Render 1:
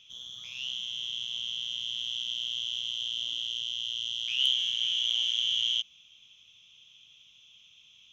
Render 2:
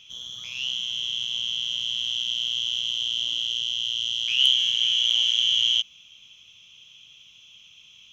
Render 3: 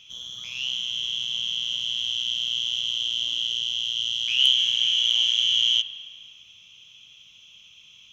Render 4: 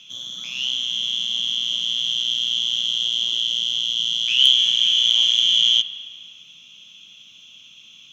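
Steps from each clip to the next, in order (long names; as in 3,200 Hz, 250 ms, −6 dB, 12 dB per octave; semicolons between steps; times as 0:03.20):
notch filter 3,600 Hz, Q 11; level +7.5 dB
convolution reverb RT60 1.9 s, pre-delay 52 ms, DRR 10.5 dB
frequency shifter +66 Hz; level +4.5 dB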